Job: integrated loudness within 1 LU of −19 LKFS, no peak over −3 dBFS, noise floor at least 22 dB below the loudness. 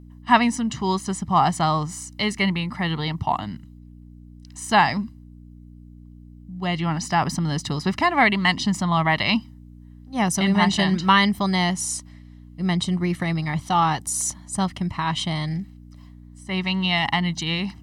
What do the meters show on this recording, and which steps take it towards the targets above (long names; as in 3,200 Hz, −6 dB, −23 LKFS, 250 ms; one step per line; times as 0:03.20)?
mains hum 60 Hz; hum harmonics up to 300 Hz; level of the hum −43 dBFS; integrated loudness −22.5 LKFS; sample peak −4.5 dBFS; target loudness −19.0 LKFS
→ hum removal 60 Hz, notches 5
level +3.5 dB
brickwall limiter −3 dBFS